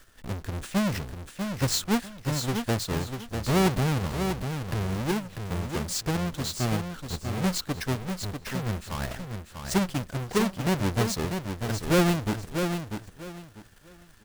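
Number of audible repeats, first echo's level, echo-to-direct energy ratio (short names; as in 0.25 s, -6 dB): 3, -6.5 dB, -6.5 dB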